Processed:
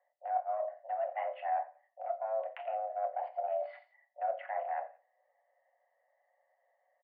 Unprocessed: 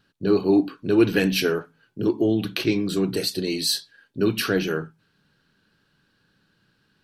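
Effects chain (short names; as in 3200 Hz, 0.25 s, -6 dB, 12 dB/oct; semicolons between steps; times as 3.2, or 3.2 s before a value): Wiener smoothing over 41 samples; mistuned SSB +330 Hz 290–2100 Hz; reverse; compressor 10:1, threshold -33 dBFS, peak gain reduction 19 dB; reverse; feedback echo 87 ms, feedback 24%, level -20 dB; on a send at -4.5 dB: reverb, pre-delay 5 ms; on the sum: treble ducked by the level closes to 1600 Hz, closed at -34.5 dBFS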